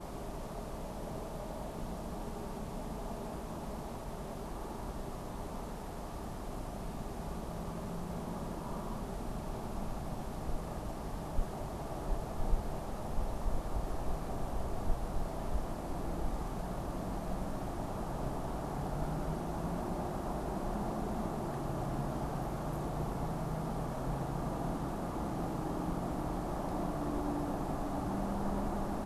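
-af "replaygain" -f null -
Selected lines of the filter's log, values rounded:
track_gain = +22.1 dB
track_peak = 0.098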